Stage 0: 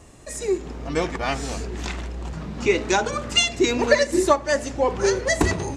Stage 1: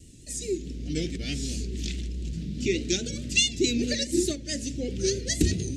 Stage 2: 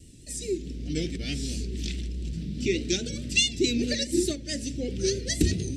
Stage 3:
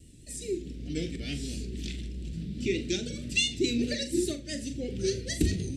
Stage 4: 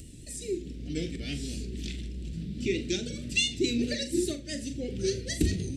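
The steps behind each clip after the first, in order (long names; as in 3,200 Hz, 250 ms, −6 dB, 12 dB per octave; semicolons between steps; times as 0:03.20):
pitch vibrato 4.7 Hz 72 cents; Chebyshev band-stop filter 270–3,500 Hz, order 2
notch filter 6,700 Hz, Q 9.6
parametric band 5,600 Hz −4.5 dB 0.68 octaves; on a send: flutter between parallel walls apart 7.2 metres, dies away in 0.24 s; on the sum: level −3 dB
upward compression, threshold −39 dBFS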